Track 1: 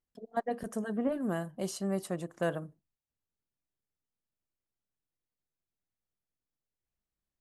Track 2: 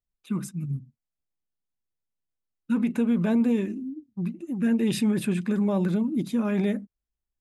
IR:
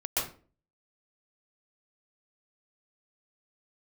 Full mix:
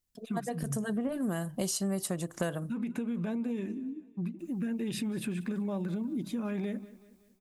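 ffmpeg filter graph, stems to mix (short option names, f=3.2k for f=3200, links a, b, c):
-filter_complex "[0:a]highshelf=f=2.8k:g=10,dynaudnorm=f=730:g=3:m=11.5dB,bass=f=250:g=6,treble=f=4k:g=2,volume=-1dB,asplit=3[a][b][c];[a]atrim=end=2.73,asetpts=PTS-STARTPTS,afade=t=out:st=2.726:d=0.004:c=hsin[d];[b]atrim=start=2.73:end=4.39,asetpts=PTS-STARTPTS,volume=0[e];[c]atrim=start=4.39,asetpts=PTS-STARTPTS,afade=t=in:d=0.004:c=hsin[f];[d][e][f]concat=n=3:v=0:a=1[g];[1:a]acompressor=threshold=-23dB:ratio=6,volume=-3.5dB,asplit=2[h][i];[i]volume=-21dB,aecho=0:1:188|376|564|752|940|1128|1316:1|0.47|0.221|0.104|0.0488|0.0229|0.0108[j];[g][h][j]amix=inputs=3:normalize=0,acompressor=threshold=-30dB:ratio=6"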